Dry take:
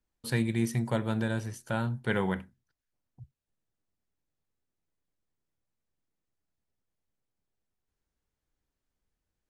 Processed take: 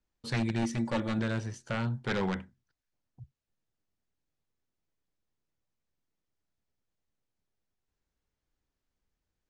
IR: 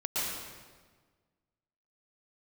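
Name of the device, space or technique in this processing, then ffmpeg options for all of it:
synthesiser wavefolder: -filter_complex "[0:a]aeval=exprs='0.075*(abs(mod(val(0)/0.075+3,4)-2)-1)':c=same,lowpass=f=7.3k:w=0.5412,lowpass=f=7.3k:w=1.3066,asettb=1/sr,asplit=3[a][b][c];[a]atrim=end=0.624[d];[b]atrim=start=0.62:end=1.19,asetpts=PTS-STARTPTS,afade=t=in:d=0.004:c=qsin,afade=t=out:st=0.566:d=0.004:c=qsin,aecho=1:1:3.5:0.56,atrim=end_sample=25137[e];[c]atrim=start=1.186[f];[d][e]acrossfade=d=0.004:c1=hsin:c2=qsin[g];[g][f]acrossfade=d=0.004:c1=qsin:c2=hsin"

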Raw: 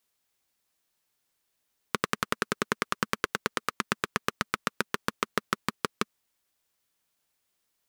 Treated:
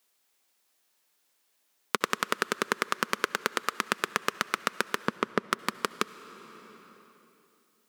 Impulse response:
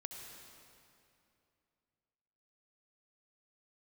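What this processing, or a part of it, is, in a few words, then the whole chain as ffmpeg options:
ducked reverb: -filter_complex "[0:a]asettb=1/sr,asplit=3[a][b][c];[a]atrim=end=5.084[d];[b]atrim=start=5.08:end=5.51,asetpts=PTS-STARTPTS,afade=t=in:d=0.004:c=qsin,afade=t=out:st=0.426:d=0.004:c=qsin,aemphasis=mode=reproduction:type=riaa[e];[c]atrim=start=5.506[f];[d][e]acrossfade=d=0.004:c1=hsin:c2=qsin[g];[g][f]acrossfade=d=0.004:c1=qsin:c2=hsin,asplit=3[h][i][j];[1:a]atrim=start_sample=2205[k];[i][k]afir=irnorm=-1:irlink=0[l];[j]apad=whole_len=347734[m];[l][m]sidechaincompress=threshold=-34dB:ratio=12:attack=34:release=921,volume=3.5dB[n];[h][n]amix=inputs=2:normalize=0,highpass=260"

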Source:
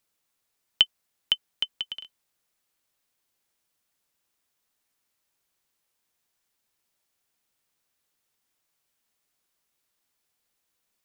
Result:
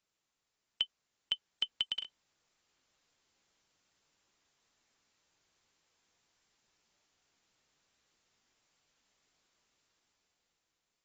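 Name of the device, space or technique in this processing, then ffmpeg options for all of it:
low-bitrate web radio: -af "dynaudnorm=f=220:g=11:m=8dB,alimiter=limit=-14.5dB:level=0:latency=1:release=71,volume=-4.5dB" -ar 24000 -c:a aac -b:a 24k

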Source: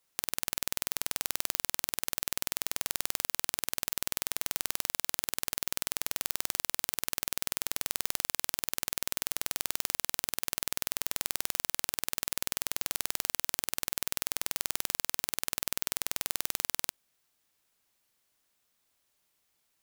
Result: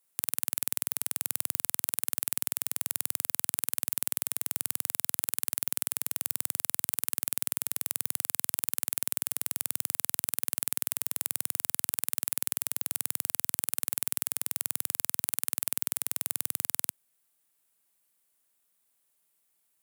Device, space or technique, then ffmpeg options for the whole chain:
budget condenser microphone: -af "highpass=f=110:w=0.5412,highpass=f=110:w=1.3066,highshelf=f=7.3k:t=q:w=1.5:g=7,volume=-4dB"

